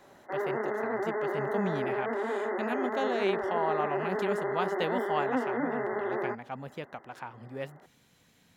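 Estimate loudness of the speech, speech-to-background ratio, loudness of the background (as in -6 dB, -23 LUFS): -36.0 LUFS, -4.0 dB, -32.0 LUFS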